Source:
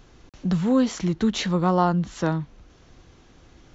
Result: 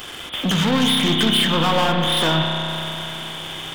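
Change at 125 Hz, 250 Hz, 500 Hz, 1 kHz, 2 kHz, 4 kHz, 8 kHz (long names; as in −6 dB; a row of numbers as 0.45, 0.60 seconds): +2.5 dB, +1.5 dB, +3.5 dB, +5.0 dB, +13.0 dB, +19.0 dB, can't be measured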